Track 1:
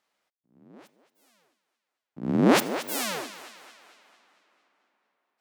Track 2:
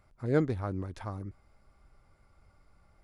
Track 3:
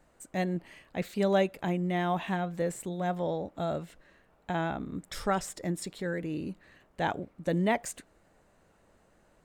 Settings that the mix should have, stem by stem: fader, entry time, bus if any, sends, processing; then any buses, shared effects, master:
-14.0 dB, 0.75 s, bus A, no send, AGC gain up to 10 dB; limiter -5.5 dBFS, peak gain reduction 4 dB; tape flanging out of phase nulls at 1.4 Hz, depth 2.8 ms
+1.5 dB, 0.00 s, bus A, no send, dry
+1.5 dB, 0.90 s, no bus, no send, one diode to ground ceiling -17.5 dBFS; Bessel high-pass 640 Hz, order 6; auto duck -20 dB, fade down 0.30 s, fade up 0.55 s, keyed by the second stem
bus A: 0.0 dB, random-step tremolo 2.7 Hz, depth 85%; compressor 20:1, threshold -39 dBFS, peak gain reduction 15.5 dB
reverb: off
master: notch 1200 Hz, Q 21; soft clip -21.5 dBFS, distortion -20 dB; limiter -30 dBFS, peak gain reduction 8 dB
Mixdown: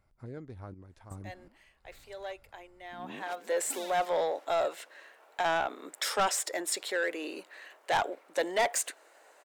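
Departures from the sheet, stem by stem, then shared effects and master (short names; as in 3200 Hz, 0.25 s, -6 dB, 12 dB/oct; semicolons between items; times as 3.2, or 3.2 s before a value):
stem 3 +1.5 dB -> +10.5 dB; master: missing limiter -30 dBFS, peak gain reduction 8 dB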